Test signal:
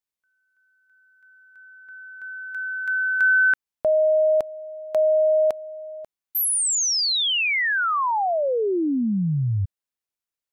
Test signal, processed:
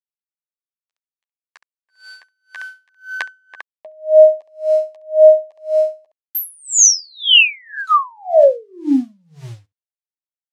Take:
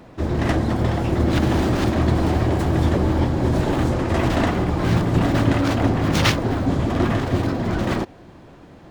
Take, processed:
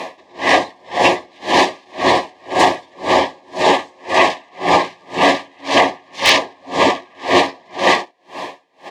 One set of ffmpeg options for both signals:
-filter_complex "[0:a]asplit=2[s0][s1];[s1]acompressor=threshold=0.0355:ratio=10:attack=2.4:release=20:knee=1:detection=rms,volume=0.794[s2];[s0][s2]amix=inputs=2:normalize=0,asuperstop=centerf=1400:order=8:qfactor=3,acrusher=bits=9:mix=0:aa=0.000001,highpass=730,lowpass=5900,asplit=2[s3][s4];[s4]aecho=0:1:11|68:0.562|0.299[s5];[s3][s5]amix=inputs=2:normalize=0,aeval=exprs='0.282*(abs(mod(val(0)/0.282+3,4)-2)-1)':c=same,alimiter=level_in=12.6:limit=0.891:release=50:level=0:latency=1,aeval=exprs='val(0)*pow(10,-39*(0.5-0.5*cos(2*PI*1.9*n/s))/20)':c=same"

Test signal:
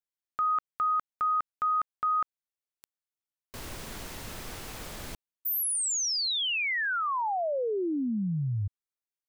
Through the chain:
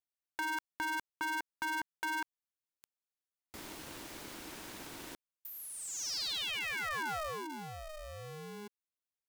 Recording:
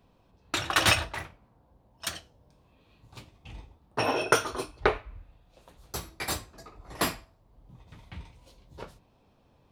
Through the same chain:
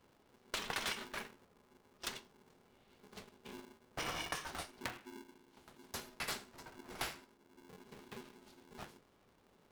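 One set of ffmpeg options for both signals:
-filter_complex "[0:a]alimiter=limit=0.133:level=0:latency=1:release=287,acrossover=split=950|5600[s0][s1][s2];[s0]acompressor=threshold=0.00794:ratio=4[s3];[s1]acompressor=threshold=0.0282:ratio=4[s4];[s2]acompressor=threshold=0.00708:ratio=4[s5];[s3][s4][s5]amix=inputs=3:normalize=0,aeval=exprs='val(0)*sgn(sin(2*PI*310*n/s))':c=same,volume=0.531"

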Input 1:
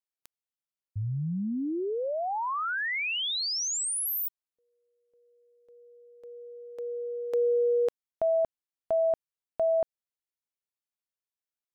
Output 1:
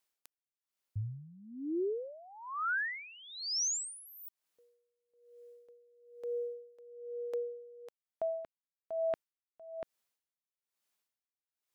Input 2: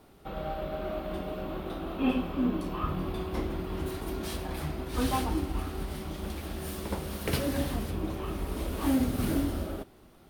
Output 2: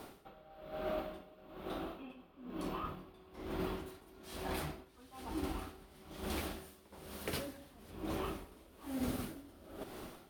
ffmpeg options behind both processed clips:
-af "lowshelf=f=180:g=-9,areverse,acompressor=threshold=0.00794:ratio=8:attack=0.84:release=892:detection=peak,areverse,aeval=exprs='val(0)*pow(10,-22*(0.5-0.5*cos(2*PI*1.1*n/s))/20)':c=same,volume=3.76"

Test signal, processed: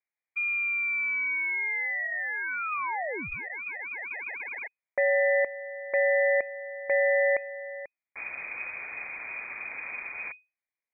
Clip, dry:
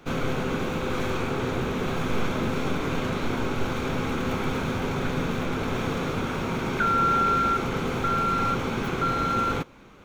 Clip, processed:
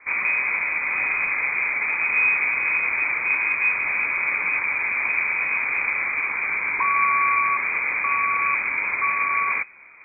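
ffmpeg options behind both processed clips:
-filter_complex "[0:a]asplit=2[s0][s1];[s1]acrusher=samples=36:mix=1:aa=0.000001,volume=0.631[s2];[s0][s2]amix=inputs=2:normalize=0,lowpass=f=2100:t=q:w=0.5098,lowpass=f=2100:t=q:w=0.6013,lowpass=f=2100:t=q:w=0.9,lowpass=f=2100:t=q:w=2.563,afreqshift=-2500"

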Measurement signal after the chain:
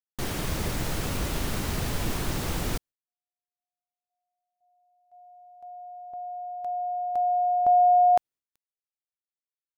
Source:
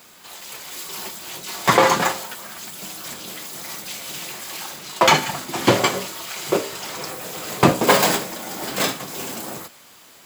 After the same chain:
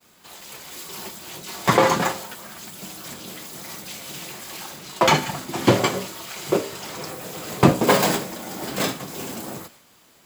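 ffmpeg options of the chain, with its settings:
-af "agate=range=0.0224:threshold=0.00708:ratio=3:detection=peak,lowshelf=f=430:g=7,volume=0.631"

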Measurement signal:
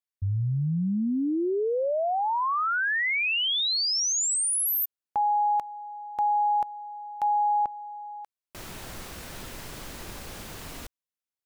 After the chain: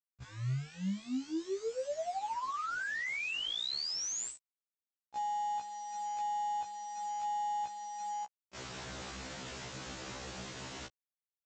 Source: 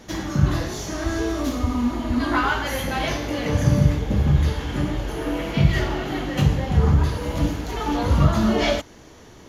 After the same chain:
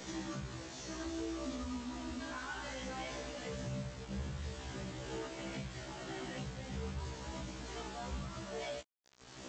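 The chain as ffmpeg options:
-af "highpass=79,acompressor=threshold=0.0251:ratio=8:attack=0.55:release=663:knee=1:detection=rms,alimiter=level_in=2.82:limit=0.0631:level=0:latency=1:release=31,volume=0.355,aresample=16000,acrusher=bits=7:mix=0:aa=0.000001,aresample=44100,afftfilt=real='re*1.73*eq(mod(b,3),0)':imag='im*1.73*eq(mod(b,3),0)':win_size=2048:overlap=0.75,volume=1.12"

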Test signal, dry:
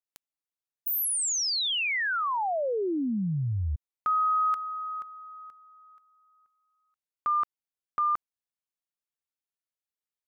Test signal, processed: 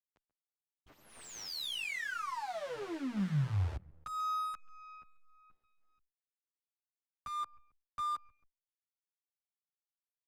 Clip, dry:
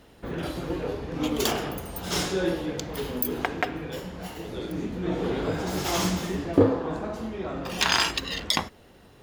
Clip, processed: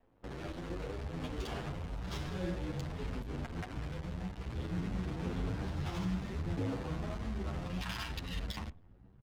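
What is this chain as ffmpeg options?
-filter_complex "[0:a]asubboost=boost=7.5:cutoff=150,acrossover=split=200|3400[s0][s1][s2];[s0]acompressor=threshold=0.0794:ratio=6:attack=34:release=279:knee=2.83:detection=peak[s3];[s3][s1][s2]amix=inputs=3:normalize=0,alimiter=limit=0.15:level=0:latency=1:release=117,aecho=1:1:136|272|408:0.126|0.0415|0.0137,acrusher=bits=6:dc=4:mix=0:aa=0.000001,adynamicsmooth=sensitivity=4.5:basefreq=1200,asplit=2[s4][s5];[s5]adelay=9.3,afreqshift=1.7[s6];[s4][s6]amix=inputs=2:normalize=1,volume=0.398"

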